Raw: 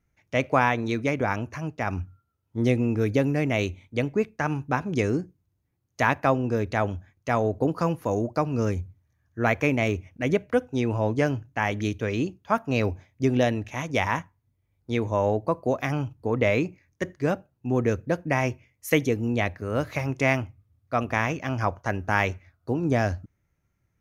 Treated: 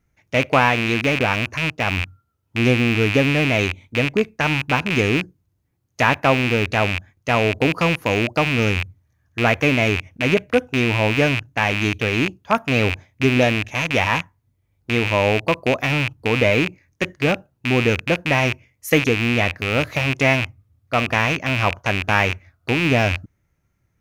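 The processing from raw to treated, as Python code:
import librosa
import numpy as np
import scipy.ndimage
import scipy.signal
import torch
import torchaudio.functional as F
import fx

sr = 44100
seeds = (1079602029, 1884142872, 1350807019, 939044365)

y = fx.rattle_buzz(x, sr, strikes_db=-33.0, level_db=-15.0)
y = y * librosa.db_to_amplitude(5.0)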